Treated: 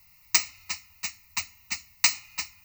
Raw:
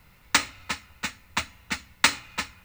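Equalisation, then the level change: pre-emphasis filter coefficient 0.9; peaking EQ 89 Hz +4 dB 0.6 oct; static phaser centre 2.3 kHz, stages 8; +7.5 dB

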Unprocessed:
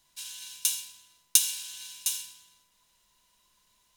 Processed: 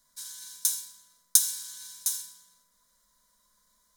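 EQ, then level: static phaser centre 540 Hz, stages 8; +2.0 dB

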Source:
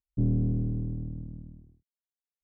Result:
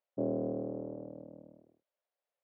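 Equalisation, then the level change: resonant high-pass 570 Hz, resonance Q 5.2; distance through air 280 m; +7.0 dB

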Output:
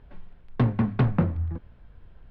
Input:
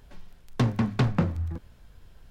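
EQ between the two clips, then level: distance through air 420 m; +2.0 dB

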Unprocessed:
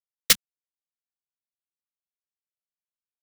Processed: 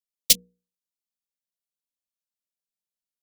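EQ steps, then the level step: Butterworth band-stop 1.2 kHz, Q 0.62; hum notches 60/120/180/240/300/360/420/480 Hz; static phaser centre 360 Hz, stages 6; +2.0 dB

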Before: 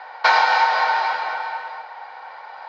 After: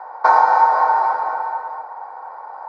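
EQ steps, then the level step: FFT filter 160 Hz 0 dB, 290 Hz +14 dB, 620 Hz +11 dB, 1.1 kHz +13 dB, 3 kHz -19 dB, 7.2 kHz +2 dB; -7.5 dB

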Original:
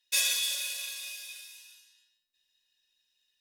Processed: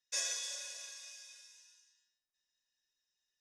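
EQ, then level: dynamic bell 590 Hz, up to +5 dB, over -53 dBFS, Q 1; four-pole ladder low-pass 7.3 kHz, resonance 35%; high-order bell 3.3 kHz -10 dB 1.2 oct; +1.0 dB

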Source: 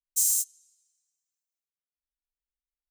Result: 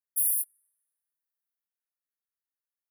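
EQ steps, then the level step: high-pass 1.4 kHz 12 dB/octave; Chebyshev band-stop 1.9–9.8 kHz, order 5; +3.0 dB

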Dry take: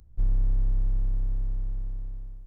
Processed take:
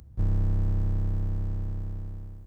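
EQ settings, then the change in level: high-pass 84 Hz 12 dB/octave; bass shelf 240 Hz +4 dB; +8.0 dB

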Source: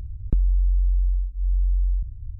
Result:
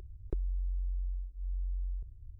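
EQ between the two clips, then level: resonant low shelf 290 Hz -8 dB, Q 3; -6.0 dB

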